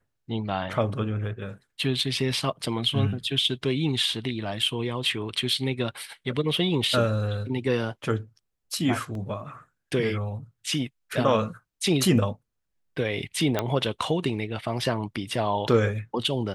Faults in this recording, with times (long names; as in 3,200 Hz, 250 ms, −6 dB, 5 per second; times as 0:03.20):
0:09.15: drop-out 2 ms
0:13.59: click −10 dBFS